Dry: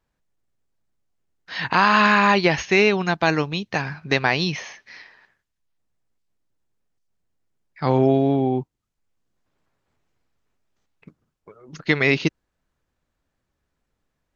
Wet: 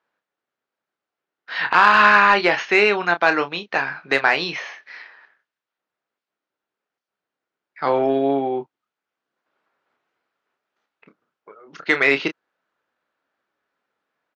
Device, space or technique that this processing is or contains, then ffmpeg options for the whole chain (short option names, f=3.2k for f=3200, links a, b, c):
intercom: -filter_complex "[0:a]highpass=410,lowpass=3.6k,equalizer=f=1.4k:t=o:w=0.42:g=5.5,asoftclip=type=tanh:threshold=-5.5dB,asplit=2[a][b];[b]adelay=29,volume=-9dB[c];[a][c]amix=inputs=2:normalize=0,volume=3dB"